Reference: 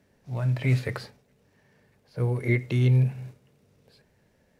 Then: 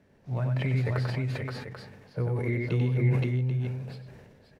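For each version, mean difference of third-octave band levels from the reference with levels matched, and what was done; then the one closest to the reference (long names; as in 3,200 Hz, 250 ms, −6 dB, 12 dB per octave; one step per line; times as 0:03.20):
5.5 dB: high-shelf EQ 4,400 Hz −11.5 dB
downward compressor 6 to 1, threshold −28 dBFS, peak gain reduction 10.5 dB
on a send: multi-tap delay 93/520/528/788 ms −4.5/−9.5/−4.5/−9.5 dB
on the sum: level that may fall only so fast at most 37 dB per second
level +2 dB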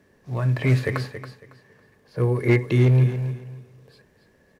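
2.5 dB: parametric band 390 Hz −3.5 dB 0.39 octaves
hollow resonant body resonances 380/1,100/1,700 Hz, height 9 dB, ringing for 20 ms
gain into a clipping stage and back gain 15 dB
on a send: repeating echo 277 ms, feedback 24%, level −11 dB
on the sum: level +3 dB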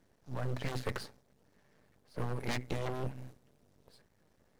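10.0 dB: wavefolder on the positive side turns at −22 dBFS
parametric band 2,400 Hz −6.5 dB 0.62 octaves
harmonic and percussive parts rebalanced percussive +7 dB
half-wave rectification
level −4.5 dB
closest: second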